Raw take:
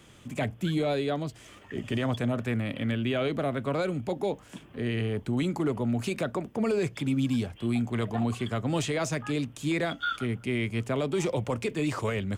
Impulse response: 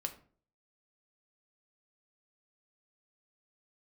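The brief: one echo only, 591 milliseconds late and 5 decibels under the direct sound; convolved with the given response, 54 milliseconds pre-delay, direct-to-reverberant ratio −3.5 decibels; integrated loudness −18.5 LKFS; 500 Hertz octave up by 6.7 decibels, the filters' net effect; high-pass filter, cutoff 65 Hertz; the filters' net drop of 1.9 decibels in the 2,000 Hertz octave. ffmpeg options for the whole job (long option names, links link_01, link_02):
-filter_complex "[0:a]highpass=65,equalizer=frequency=500:width_type=o:gain=8.5,equalizer=frequency=2000:width_type=o:gain=-3,aecho=1:1:591:0.562,asplit=2[link_01][link_02];[1:a]atrim=start_sample=2205,adelay=54[link_03];[link_02][link_03]afir=irnorm=-1:irlink=0,volume=4dB[link_04];[link_01][link_04]amix=inputs=2:normalize=0,volume=1dB"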